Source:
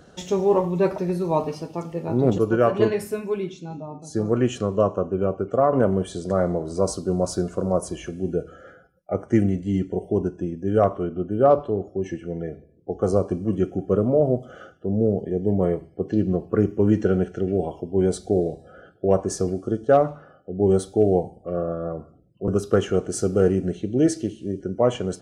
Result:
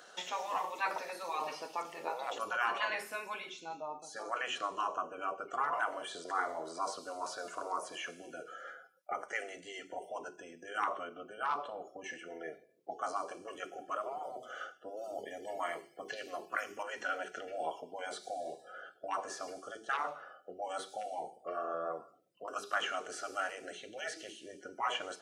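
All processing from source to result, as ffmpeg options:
-filter_complex "[0:a]asettb=1/sr,asplit=3[s0][s1][s2];[s0]atrim=end=14.974[s3];[s1]atrim=start=14.97:end=16.83,asetpts=PTS-STARTPTS,afade=t=in:d=0.004:c=qsin,afade=t=out:st=1.856:d=0.004:c=qsin,highshelf=f=2000:g=9.5,bandreject=f=50:t=h:w=6,bandreject=f=100:t=h:w=6,bandreject=f=150:t=h:w=6,bandreject=f=200:t=h:w=6,bandreject=f=250:t=h:w=6,bandreject=f=300:t=h:w=6,bandreject=f=350:t=h:w=6,bandreject=f=400:t=h:w=6[s4];[s2]atrim=start=16.826[s5];[s3][s4]acrossfade=d=0.004:c1=hsin:c2=qsin[s6];[s6][s5]acrossfade=d=0.004:c1=qsin:c2=hsin,afftfilt=real='re*lt(hypot(re,im),0.251)':imag='im*lt(hypot(re,im),0.251)':win_size=1024:overlap=0.75,acrossover=split=3300[s7][s8];[s8]acompressor=threshold=0.00224:ratio=4:attack=1:release=60[s9];[s7][s9]amix=inputs=2:normalize=0,highpass=910,volume=1.33"

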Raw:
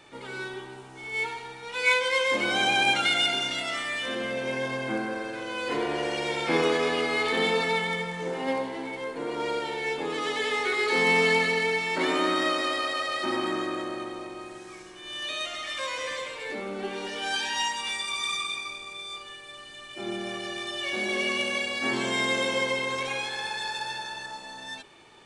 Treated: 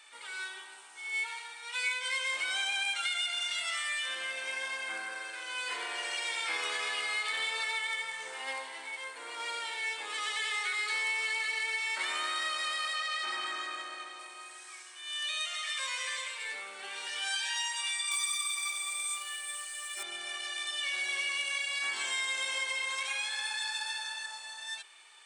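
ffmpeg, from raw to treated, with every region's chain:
-filter_complex "[0:a]asettb=1/sr,asplit=3[s0][s1][s2];[s0]atrim=end=12.954[s3];[s1]atrim=start=12.95:end=14.19,asetpts=PTS-STARTPTS,afade=t=in:d=0.004:c=qsin,afade=t=out:st=1.236:d=0.004:c=qsin,lowpass=7300,bandreject=f=1000:w=11[s4];[s2]atrim=start=14.186[s5];[s3][s4]acrossfade=d=0.004:c1=hsin:c2=qsin[s6];[s6][s5]acrossfade=d=0.004:c1=qsin:c2=hsin,asettb=1/sr,asplit=3[s7][s8][s9];[s7]atrim=end=18.114[s10];[s8]atrim=start=18.11:end=20.03,asetpts=PTS-STARTPTS,afade=t=in:d=0.004:c=qsin,afade=t=out:st=1.916:d=0.004:c=qsin,equalizer=f=10000:w=0.65:g=8,aecho=1:1:5.2:0.95,atrim=end_sample=84672,acrusher=bits=4:mode=log:mix=0:aa=0.000001[s11];[s9]atrim=start=20.026[s12];[s10][s11]acrossfade=d=0.004:c1=hsin:c2=qsin[s13];[s13][s12]acrossfade=d=0.004:c1=qsin:c2=hsin,highpass=1400,equalizer=f=8500:t=o:w=0.24:g=11,acompressor=threshold=0.0316:ratio=6"

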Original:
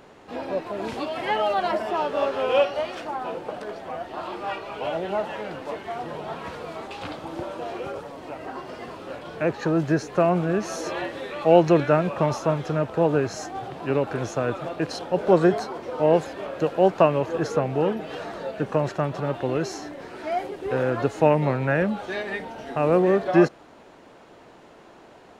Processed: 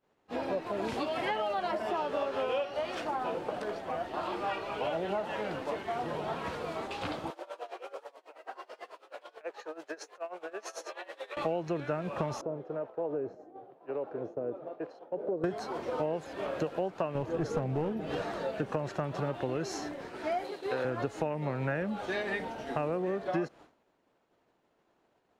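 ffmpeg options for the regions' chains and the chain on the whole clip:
-filter_complex "[0:a]asettb=1/sr,asplit=3[s0][s1][s2];[s0]atrim=end=7.304[s3];[s1]atrim=start=7.3:end=11.37,asetpts=PTS-STARTPTS,afade=t=in:d=0.004:c=qsin,afade=t=out:st=4.066:d=0.004:c=qsin,highpass=f=450:w=0.5412,highpass=f=450:w=1.3066,acompressor=threshold=0.0282:ratio=6:attack=3.2:release=140:knee=1:detection=peak,tremolo=f=9.2:d=0.85[s4];[s2]atrim=start=11.366[s5];[s3][s4]acrossfade=d=0.004:c1=hsin:c2=qsin[s6];[s6][s5]acrossfade=d=0.004:c1=qsin:c2=hsin,asettb=1/sr,asplit=3[s7][s8][s9];[s7]atrim=end=12.414[s10];[s8]atrim=start=12.41:end=15.44,asetpts=PTS-STARTPTS,afade=t=in:d=0.004:c=qsin,afade=t=out:st=3.026:d=0.004:c=qsin,acrossover=split=600[s11][s12];[s11]aeval=exprs='val(0)*(1-0.7/2+0.7/2*cos(2*PI*1*n/s))':c=same[s13];[s12]aeval=exprs='val(0)*(1-0.7/2-0.7/2*cos(2*PI*1*n/s))':c=same[s14];[s13][s14]amix=inputs=2:normalize=0,bandpass=f=460:t=q:w=1.5,acompressor=threshold=0.0355:ratio=2:attack=3.2:release=140:knee=1:detection=peak[s15];[s9]atrim=start=15.436[s16];[s10][s15]acrossfade=d=0.004:c1=hsin:c2=qsin[s17];[s17][s16]acrossfade=d=0.004:c1=qsin:c2=hsin,asettb=1/sr,asplit=3[s18][s19][s20];[s18]atrim=end=17.154[s21];[s19]atrim=start=17.15:end=18.22,asetpts=PTS-STARTPTS,afade=t=in:d=0.004:c=qsin,afade=t=out:st=1.066:d=0.004:c=qsin,lowshelf=f=410:g=10,aeval=exprs='clip(val(0),-1,0.178)':c=same[s22];[s20]atrim=start=18.216[s23];[s21][s22]acrossfade=d=0.004:c1=hsin:c2=qsin[s24];[s24][s23]acrossfade=d=0.004:c1=qsin:c2=hsin,asettb=1/sr,asplit=3[s25][s26][s27];[s25]atrim=end=20.444[s28];[s26]atrim=start=20.44:end=20.85,asetpts=PTS-STARTPTS,afade=t=in:d=0.004:c=qsin,afade=t=out:st=0.406:d=0.004:c=qsin,highpass=f=450:p=1,equalizer=f=4100:w=7.6:g=14[s29];[s27]atrim=start=20.846[s30];[s28][s29]acrossfade=d=0.004:c1=hsin:c2=qsin[s31];[s31][s30]acrossfade=d=0.004:c1=qsin:c2=hsin,agate=range=0.0224:threshold=0.0178:ratio=3:detection=peak,acompressor=threshold=0.0447:ratio=10,volume=0.841"

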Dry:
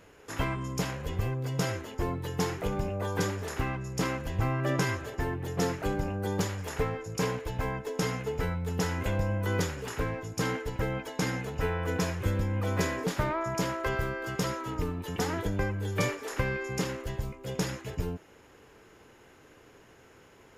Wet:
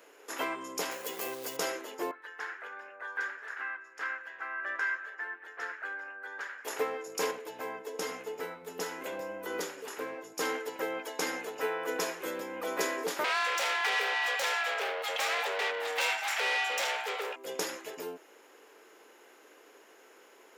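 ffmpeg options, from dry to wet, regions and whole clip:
-filter_complex "[0:a]asettb=1/sr,asplit=3[s0][s1][s2];[s0]atrim=end=0.914[s3];[s1]atrim=start=0.91:end=1.57,asetpts=PTS-STARTPTS,afade=t=in:d=0.004:c=qsin,afade=t=out:st=0.656:d=0.004:c=qsin,highshelf=f=4600:g=9.5,acrusher=bits=4:mode=log:mix=0:aa=0.000001[s4];[s2]atrim=start=1.566[s5];[s3][s4]acrossfade=d=0.004:c1=hsin:c2=qsin[s6];[s6][s5]acrossfade=d=0.004:c1=qsin:c2=hsin,asettb=1/sr,asplit=3[s7][s8][s9];[s7]atrim=end=2.114[s10];[s8]atrim=start=2.11:end=6.65,asetpts=PTS-STARTPTS,afade=t=in:d=0.004:c=qsin,afade=t=out:st=4.536:d=0.004:c=qsin,bandpass=f=1600:t=q:w=5.7,acontrast=82[s11];[s9]atrim=start=6.646[s12];[s10][s11]acrossfade=d=0.004:c1=hsin:c2=qsin[s13];[s13][s12]acrossfade=d=0.004:c1=qsin:c2=hsin,asettb=1/sr,asplit=3[s14][s15][s16];[s14]atrim=end=7.314[s17];[s15]atrim=start=7.31:end=10.39,asetpts=PTS-STARTPTS,afade=t=in:d=0.004:c=qsin,afade=t=out:st=3.076:d=0.004:c=qsin,highpass=53,lowshelf=f=190:g=8.5,flanger=delay=5.6:depth=5.2:regen=-78:speed=1:shape=sinusoidal[s18];[s16]atrim=start=10.386[s19];[s17][s18]acrossfade=d=0.004:c1=hsin:c2=qsin[s20];[s20][s19]acrossfade=d=0.004:c1=qsin:c2=hsin,asettb=1/sr,asplit=3[s21][s22][s23];[s21]atrim=end=13.244[s24];[s22]atrim=start=13.24:end=17.36,asetpts=PTS-STARTPTS,afade=t=in:d=0.004:c=qsin,afade=t=out:st=4.116:d=0.004:c=qsin,afreqshift=370,aeval=exprs='(tanh(70.8*val(0)+0.6)-tanh(0.6))/70.8':c=same,equalizer=f=2600:t=o:w=2.8:g=14.5[s25];[s23]atrim=start=17.356[s26];[s24][s25]acrossfade=d=0.004:c1=hsin:c2=qsin[s27];[s27][s26]acrossfade=d=0.004:c1=qsin:c2=hsin,highpass=f=330:w=0.5412,highpass=f=330:w=1.3066,highshelf=f=11000:g=8"

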